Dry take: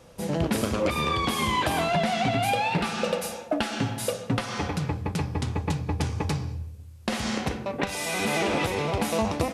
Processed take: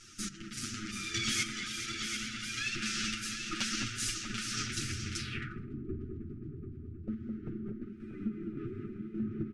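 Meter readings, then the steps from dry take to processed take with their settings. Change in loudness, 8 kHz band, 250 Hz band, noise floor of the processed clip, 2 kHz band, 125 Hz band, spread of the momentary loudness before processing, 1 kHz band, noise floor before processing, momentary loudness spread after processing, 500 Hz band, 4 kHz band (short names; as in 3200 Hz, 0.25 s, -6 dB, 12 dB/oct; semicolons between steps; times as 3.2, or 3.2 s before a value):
-9.5 dB, -1.5 dB, -9.5 dB, -47 dBFS, -7.5 dB, -13.0 dB, 6 LU, -20.5 dB, -42 dBFS, 10 LU, -20.5 dB, -4.5 dB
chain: minimum comb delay 8.8 ms; random-step tremolo, depth 85%; FFT band-reject 420–1200 Hz; in parallel at -1 dB: compressor 6:1, threshold -41 dBFS, peak gain reduction 14.5 dB; on the sum: fifteen-band EQ 400 Hz -8 dB, 1600 Hz -3 dB, 4000 Hz -3 dB, 10000 Hz +7 dB; echo 0.738 s -7.5 dB; wavefolder -20 dBFS; flange 0.5 Hz, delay 2.1 ms, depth 8.2 ms, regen +35%; on a send: echo with dull and thin repeats by turns 0.212 s, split 2300 Hz, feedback 78%, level -6.5 dB; on the sum: spectral repair 4.72–5.61, 510–1300 Hz after; low-pass sweep 6000 Hz -> 450 Hz, 5.18–5.74; low shelf 310 Hz -8 dB; gain +1.5 dB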